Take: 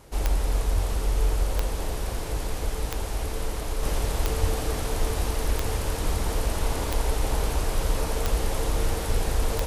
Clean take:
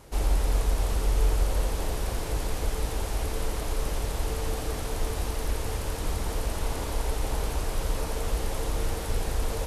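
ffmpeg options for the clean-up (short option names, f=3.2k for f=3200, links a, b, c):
-filter_complex "[0:a]adeclick=t=4,asplit=3[a][b][c];[a]afade=t=out:st=0.74:d=0.02[d];[b]highpass=f=140:w=0.5412,highpass=f=140:w=1.3066,afade=t=in:st=0.74:d=0.02,afade=t=out:st=0.86:d=0.02[e];[c]afade=t=in:st=0.86:d=0.02[f];[d][e][f]amix=inputs=3:normalize=0,asplit=3[g][h][i];[g]afade=t=out:st=4.4:d=0.02[j];[h]highpass=f=140:w=0.5412,highpass=f=140:w=1.3066,afade=t=in:st=4.4:d=0.02,afade=t=out:st=4.52:d=0.02[k];[i]afade=t=in:st=4.52:d=0.02[l];[j][k][l]amix=inputs=3:normalize=0,asetnsamples=n=441:p=0,asendcmd='3.83 volume volume -3.5dB',volume=0dB"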